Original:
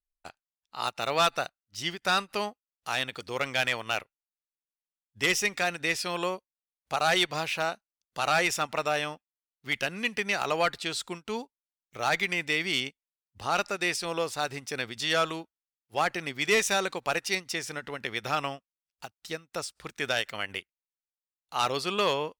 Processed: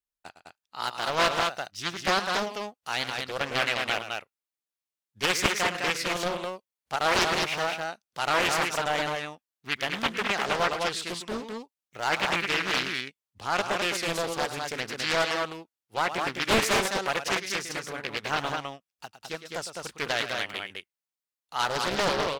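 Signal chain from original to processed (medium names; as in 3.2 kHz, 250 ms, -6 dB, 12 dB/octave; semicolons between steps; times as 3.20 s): high-pass 94 Hz 6 dB/octave; loudspeakers at several distances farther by 37 m -11 dB, 71 m -4 dB; loudspeaker Doppler distortion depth 0.88 ms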